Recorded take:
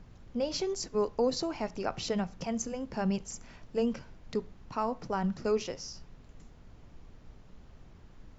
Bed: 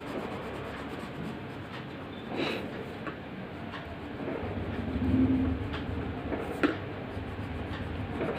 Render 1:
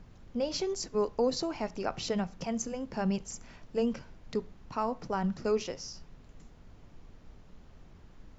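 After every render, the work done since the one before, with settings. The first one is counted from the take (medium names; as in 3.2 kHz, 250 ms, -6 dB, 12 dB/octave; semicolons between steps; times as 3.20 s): de-hum 60 Hz, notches 2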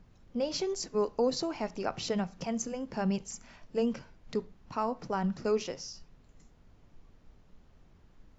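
noise print and reduce 6 dB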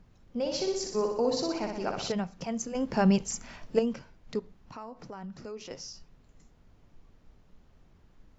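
0.39–2.12 s: flutter echo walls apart 10.4 m, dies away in 0.8 s; 2.75–3.79 s: gain +7.5 dB; 4.39–5.71 s: compression 2.5:1, threshold -43 dBFS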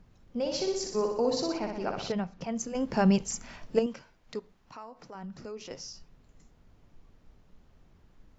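1.57–2.56 s: distance through air 100 m; 3.86–5.15 s: bass shelf 350 Hz -9.5 dB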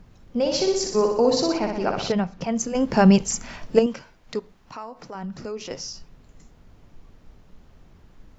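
trim +8.5 dB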